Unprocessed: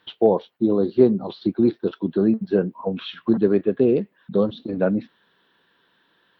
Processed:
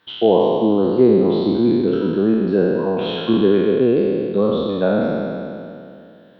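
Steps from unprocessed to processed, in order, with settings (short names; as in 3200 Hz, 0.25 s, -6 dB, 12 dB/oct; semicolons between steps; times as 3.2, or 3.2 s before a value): spectral trails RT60 2.54 s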